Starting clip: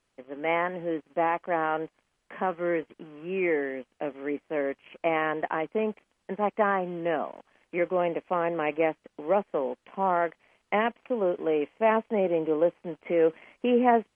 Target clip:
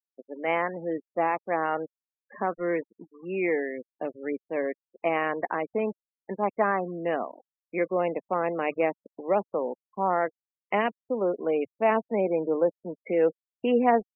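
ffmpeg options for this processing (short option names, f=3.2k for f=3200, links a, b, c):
-af "aeval=exprs='val(0)*gte(abs(val(0)),0.0075)':c=same,bandreject=f=50:t=h:w=6,bandreject=f=100:t=h:w=6,bandreject=f=150:t=h:w=6,afftfilt=real='re*gte(hypot(re,im),0.0178)':imag='im*gte(hypot(re,im),0.0178)':win_size=1024:overlap=0.75"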